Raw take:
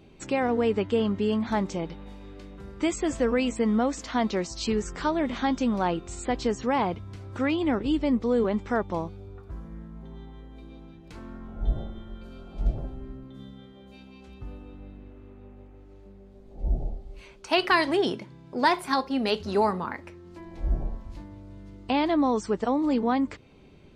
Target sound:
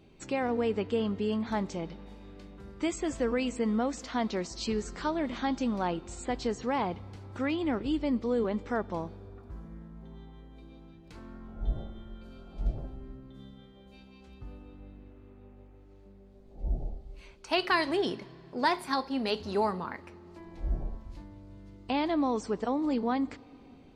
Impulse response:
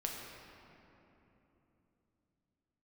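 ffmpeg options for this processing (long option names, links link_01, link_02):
-filter_complex "[0:a]asplit=2[link_01][link_02];[link_02]equalizer=frequency=4500:width=1.7:gain=12.5[link_03];[1:a]atrim=start_sample=2205[link_04];[link_03][link_04]afir=irnorm=-1:irlink=0,volume=-20.5dB[link_05];[link_01][link_05]amix=inputs=2:normalize=0,volume=-5.5dB"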